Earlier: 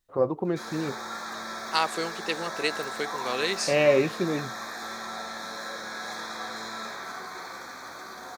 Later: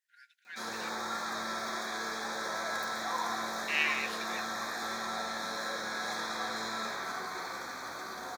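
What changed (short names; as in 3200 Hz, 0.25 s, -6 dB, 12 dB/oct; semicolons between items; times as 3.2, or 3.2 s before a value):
first voice: add brick-wall FIR high-pass 1400 Hz; second voice: muted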